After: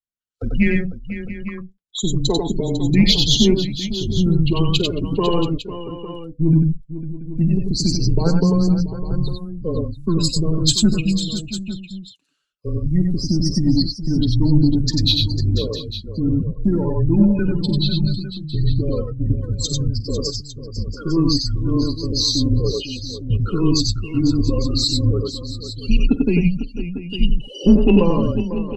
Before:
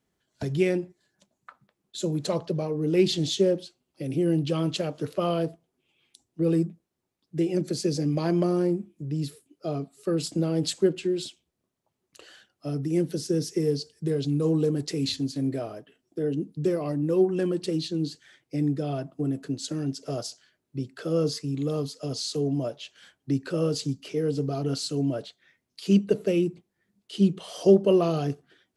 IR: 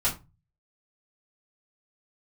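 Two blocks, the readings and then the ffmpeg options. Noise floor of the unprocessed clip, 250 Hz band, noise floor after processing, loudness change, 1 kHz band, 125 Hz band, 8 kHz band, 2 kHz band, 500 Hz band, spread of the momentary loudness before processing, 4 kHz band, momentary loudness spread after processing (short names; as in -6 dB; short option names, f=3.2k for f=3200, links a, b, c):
-81 dBFS, +8.0 dB, -41 dBFS, +7.5 dB, +5.0 dB, +11.0 dB, +10.5 dB, +9.5 dB, +1.0 dB, 11 LU, +14.0 dB, 13 LU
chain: -filter_complex "[0:a]afftdn=nr=35:nf=-33,highshelf=f=2.6k:g=10,afreqshift=-170,asplit=2[a][b];[b]asoftclip=type=tanh:threshold=-17.5dB,volume=-7dB[c];[a][c]amix=inputs=2:normalize=0,aecho=1:1:49|93|100|499|682|853:0.112|0.631|0.335|0.251|0.168|0.211,volume=4dB"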